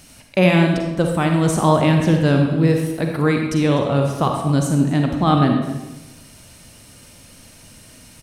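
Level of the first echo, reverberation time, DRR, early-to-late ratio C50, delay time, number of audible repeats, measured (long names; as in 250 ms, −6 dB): −17.0 dB, 1.1 s, 2.5 dB, 3.5 dB, 250 ms, 1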